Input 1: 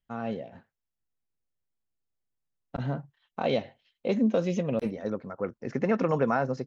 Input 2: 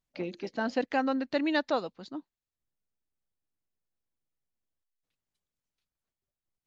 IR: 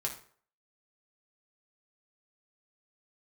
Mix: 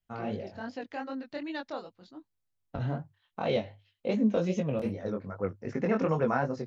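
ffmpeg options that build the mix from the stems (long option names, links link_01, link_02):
-filter_complex "[0:a]volume=1dB[link_01];[1:a]volume=-6dB[link_02];[link_01][link_02]amix=inputs=2:normalize=0,equalizer=frequency=100:width=6.9:gain=13,flanger=delay=18.5:depth=5.6:speed=2.6"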